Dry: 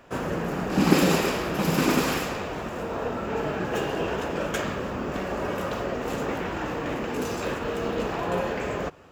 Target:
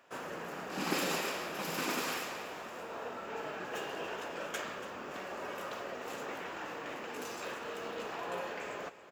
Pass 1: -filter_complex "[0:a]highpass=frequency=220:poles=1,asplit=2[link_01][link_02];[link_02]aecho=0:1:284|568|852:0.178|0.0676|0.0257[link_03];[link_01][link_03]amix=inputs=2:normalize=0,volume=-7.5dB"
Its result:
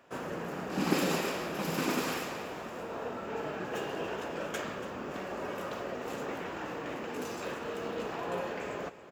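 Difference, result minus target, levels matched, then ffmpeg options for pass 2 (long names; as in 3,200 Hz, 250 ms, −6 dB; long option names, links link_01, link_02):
250 Hz band +4.5 dB
-filter_complex "[0:a]highpass=frequency=780:poles=1,asplit=2[link_01][link_02];[link_02]aecho=0:1:284|568|852:0.178|0.0676|0.0257[link_03];[link_01][link_03]amix=inputs=2:normalize=0,volume=-7.5dB"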